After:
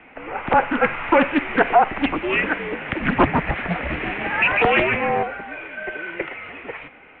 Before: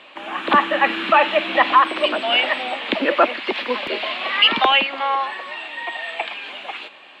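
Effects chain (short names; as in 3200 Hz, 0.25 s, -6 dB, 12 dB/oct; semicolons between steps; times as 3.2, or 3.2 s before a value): 2.88–5.23 frequency-shifting echo 0.149 s, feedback 40%, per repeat -110 Hz, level -4 dB; mistuned SSB -320 Hz 360–2800 Hz; Doppler distortion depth 0.3 ms; gain -1 dB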